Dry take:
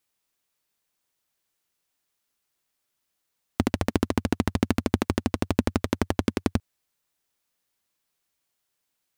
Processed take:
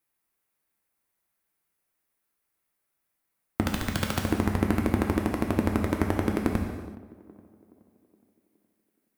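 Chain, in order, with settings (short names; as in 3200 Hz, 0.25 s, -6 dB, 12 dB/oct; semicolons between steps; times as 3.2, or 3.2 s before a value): band shelf 4700 Hz -8 dB; 3.64–4.19 wrapped overs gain 15.5 dB; tape echo 0.419 s, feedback 54%, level -16.5 dB, low-pass 1100 Hz; non-linear reverb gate 0.41 s falling, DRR 1.5 dB; gain -2 dB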